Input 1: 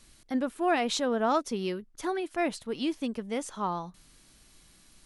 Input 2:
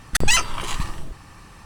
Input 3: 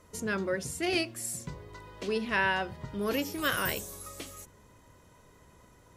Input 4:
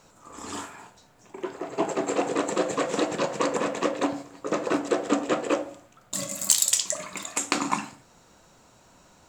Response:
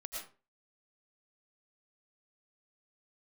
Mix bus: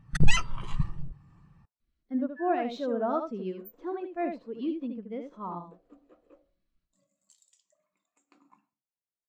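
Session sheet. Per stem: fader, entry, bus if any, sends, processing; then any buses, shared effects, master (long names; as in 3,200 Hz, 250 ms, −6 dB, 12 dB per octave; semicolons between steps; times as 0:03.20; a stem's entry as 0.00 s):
+2.0 dB, 1.80 s, send −19 dB, echo send −4 dB, running median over 5 samples; notch filter 810 Hz, Q 12
−0.5 dB, 0.00 s, no send, no echo send, parametric band 150 Hz +10.5 dB 0.77 octaves
−10.5 dB, 0.00 s, no send, no echo send, spectral tilt +3 dB per octave; every bin expanded away from the loudest bin 4 to 1
−19.0 dB, 0.80 s, send −13 dB, no echo send, no processing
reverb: on, RT60 0.35 s, pre-delay 70 ms
echo: single-tap delay 75 ms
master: high-shelf EQ 6,900 Hz −8.5 dB; every bin expanded away from the loudest bin 1.5 to 1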